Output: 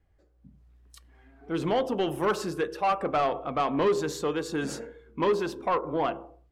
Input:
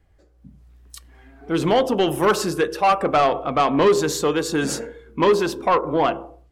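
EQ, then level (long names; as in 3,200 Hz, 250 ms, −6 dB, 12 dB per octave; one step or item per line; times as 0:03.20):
high-shelf EQ 4,800 Hz −6.5 dB
−8.0 dB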